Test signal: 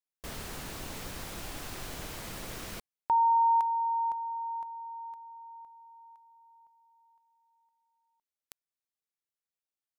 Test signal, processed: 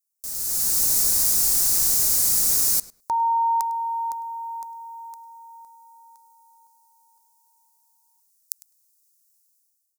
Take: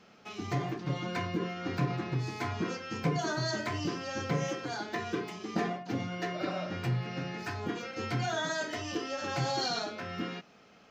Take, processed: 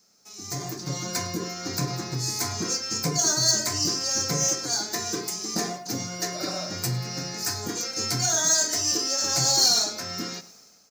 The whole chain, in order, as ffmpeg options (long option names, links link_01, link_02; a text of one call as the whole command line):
ffmpeg -i in.wav -filter_complex "[0:a]dynaudnorm=framelen=160:gausssize=7:maxgain=15dB,asplit=2[link_01][link_02];[link_02]adelay=103,lowpass=frequency=3300:poles=1,volume=-16dB,asplit=2[link_03][link_04];[link_04]adelay=103,lowpass=frequency=3300:poles=1,volume=0.16[link_05];[link_01][link_03][link_05]amix=inputs=3:normalize=0,aexciter=amount=8.6:drive=9.5:freq=4700,volume=-13dB" out.wav